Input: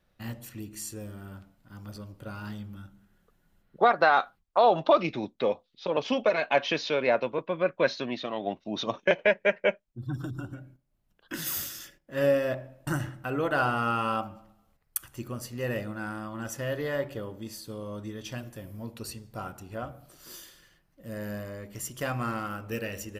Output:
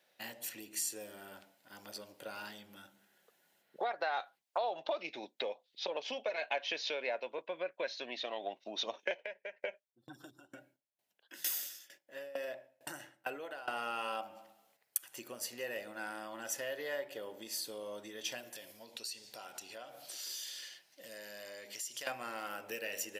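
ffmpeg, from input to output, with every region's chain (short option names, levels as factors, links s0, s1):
-filter_complex "[0:a]asettb=1/sr,asplit=3[s0][s1][s2];[s0]atrim=end=9.174[s3];[s1]atrim=start=9.17:end=13.68,asetpts=PTS-STARTPTS,afade=t=in:d=0.004:c=qsin,afade=t=out:st=4.506:d=0.004:c=qsin,acompressor=threshold=0.0501:ratio=10:attack=3.2:release=140:knee=1:detection=peak,aeval=exprs='val(0)*pow(10,-22*if(lt(mod(2.2*n/s,1),2*abs(2.2)/1000),1-mod(2.2*n/s,1)/(2*abs(2.2)/1000),(mod(2.2*n/s,1)-2*abs(2.2)/1000)/(1-2*abs(2.2)/1000))/20)':c=same[s4];[s2]atrim=start=13.676[s5];[s3][s4]acrossfade=d=0.004:c1=hsin:c2=qsin[s6];[s6][s5]acrossfade=d=0.004:c1=qsin:c2=hsin,asettb=1/sr,asplit=3[s7][s8][s9];[s7]atrim=end=18.554[s10];[s8]atrim=start=18.55:end=22.07,asetpts=PTS-STARTPTS,afade=t=in:d=0.004:c=qsin,afade=t=out:st=3.516:d=0.004:c=qsin,equalizer=f=4700:w=0.59:g=11.5,acompressor=threshold=0.00501:ratio=5:attack=3.2:release=140:knee=1:detection=peak[s11];[s9]atrim=start=22.066[s12];[s10][s11]acrossfade=d=0.004:c1=hsin:c2=qsin[s13];[s13][s12]acrossfade=d=0.004:c1=qsin:c2=hsin,equalizer=f=1200:w=2.6:g=-11.5,acompressor=threshold=0.0112:ratio=4,highpass=620,volume=2"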